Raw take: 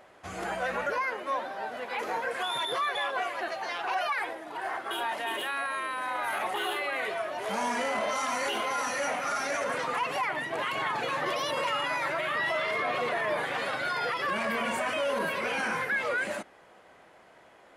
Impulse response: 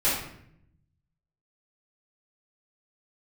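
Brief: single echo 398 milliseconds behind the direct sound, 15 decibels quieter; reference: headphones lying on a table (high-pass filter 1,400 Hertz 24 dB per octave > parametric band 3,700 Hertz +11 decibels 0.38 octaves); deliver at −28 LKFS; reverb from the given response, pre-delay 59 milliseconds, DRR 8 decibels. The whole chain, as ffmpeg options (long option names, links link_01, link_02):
-filter_complex "[0:a]aecho=1:1:398:0.178,asplit=2[link_01][link_02];[1:a]atrim=start_sample=2205,adelay=59[link_03];[link_02][link_03]afir=irnorm=-1:irlink=0,volume=-21dB[link_04];[link_01][link_04]amix=inputs=2:normalize=0,highpass=frequency=1400:width=0.5412,highpass=frequency=1400:width=1.3066,equalizer=frequency=3700:width_type=o:width=0.38:gain=11,volume=2.5dB"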